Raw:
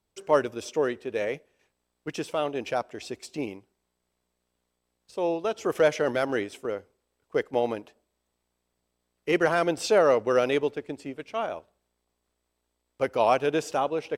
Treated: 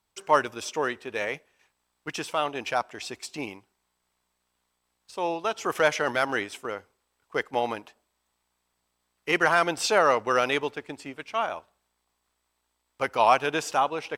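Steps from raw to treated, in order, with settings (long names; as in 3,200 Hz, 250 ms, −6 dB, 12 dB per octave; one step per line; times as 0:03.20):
low shelf with overshoot 700 Hz −7 dB, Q 1.5
level +4.5 dB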